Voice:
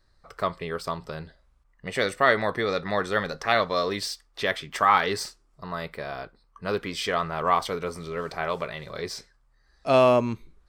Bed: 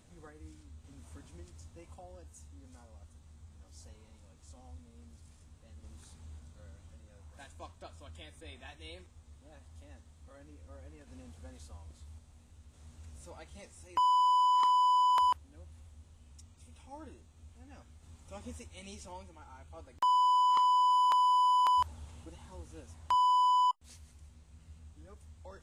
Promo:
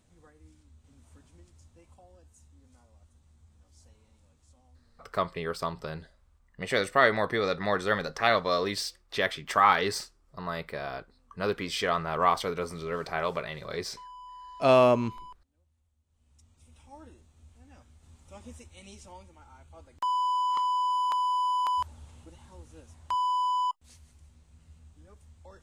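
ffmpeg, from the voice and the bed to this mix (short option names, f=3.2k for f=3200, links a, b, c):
-filter_complex "[0:a]adelay=4750,volume=-1.5dB[a];[1:a]volume=14dB,afade=t=out:st=4.28:d=0.93:silence=0.177828,afade=t=in:st=16.06:d=0.73:silence=0.112202[b];[a][b]amix=inputs=2:normalize=0"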